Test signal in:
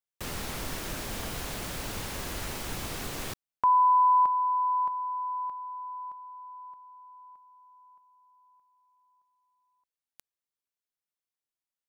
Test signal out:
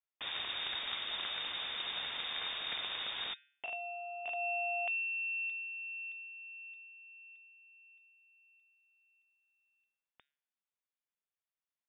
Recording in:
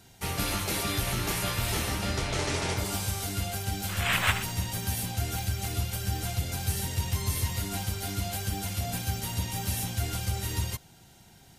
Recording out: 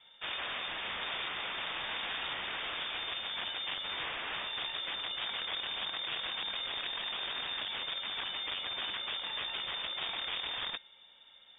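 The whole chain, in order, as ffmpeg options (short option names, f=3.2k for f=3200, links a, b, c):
-af "equalizer=f=520:w=2:g=-4,bandreject=f=142.5:t=h:w=4,bandreject=f=285:t=h:w=4,bandreject=f=427.5:t=h:w=4,bandreject=f=570:t=h:w=4,bandreject=f=712.5:t=h:w=4,bandreject=f=855:t=h:w=4,bandreject=f=997.5:t=h:w=4,bandreject=f=1.14k:t=h:w=4,bandreject=f=1.2825k:t=h:w=4,bandreject=f=1.425k:t=h:w=4,bandreject=f=1.5675k:t=h:w=4,bandreject=f=1.71k:t=h:w=4,bandreject=f=1.8525k:t=h:w=4,bandreject=f=1.995k:t=h:w=4,bandreject=f=2.1375k:t=h:w=4,bandreject=f=2.28k:t=h:w=4,aresample=16000,aeval=exprs='(mod(25.1*val(0)+1,2)-1)/25.1':c=same,aresample=44100,lowpass=f=3.1k:t=q:w=0.5098,lowpass=f=3.1k:t=q:w=0.6013,lowpass=f=3.1k:t=q:w=0.9,lowpass=f=3.1k:t=q:w=2.563,afreqshift=-3700,volume=-2dB"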